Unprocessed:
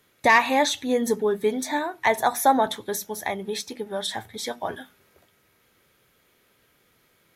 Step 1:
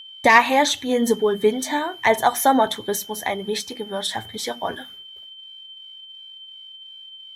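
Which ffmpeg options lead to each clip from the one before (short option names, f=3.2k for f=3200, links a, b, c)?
-af "agate=range=-33dB:threshold=-50dB:ratio=3:detection=peak,aeval=exprs='val(0)+0.00794*sin(2*PI*3100*n/s)':c=same,aphaser=in_gain=1:out_gain=1:delay=4.3:decay=0.27:speed=1.4:type=sinusoidal,volume=3dB"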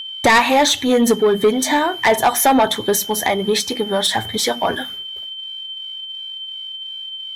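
-filter_complex "[0:a]asplit=2[a][b];[b]acompressor=threshold=-26dB:ratio=6,volume=1dB[c];[a][c]amix=inputs=2:normalize=0,asoftclip=type=tanh:threshold=-12dB,volume=4.5dB"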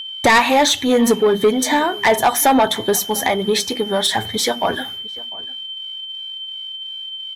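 -filter_complex "[0:a]asplit=2[a][b];[b]adelay=699.7,volume=-21dB,highshelf=f=4k:g=-15.7[c];[a][c]amix=inputs=2:normalize=0"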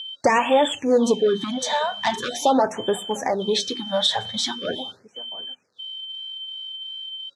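-af "highpass=120,equalizer=f=530:t=q:w=4:g=6,equalizer=f=2.1k:t=q:w=4:g=-9,equalizer=f=3.6k:t=q:w=4:g=6,lowpass=f=7.4k:w=0.5412,lowpass=f=7.4k:w=1.3066,afftfilt=real='re*(1-between(b*sr/1024,300*pow(5200/300,0.5+0.5*sin(2*PI*0.42*pts/sr))/1.41,300*pow(5200/300,0.5+0.5*sin(2*PI*0.42*pts/sr))*1.41))':imag='im*(1-between(b*sr/1024,300*pow(5200/300,0.5+0.5*sin(2*PI*0.42*pts/sr))/1.41,300*pow(5200/300,0.5+0.5*sin(2*PI*0.42*pts/sr))*1.41))':win_size=1024:overlap=0.75,volume=-5.5dB"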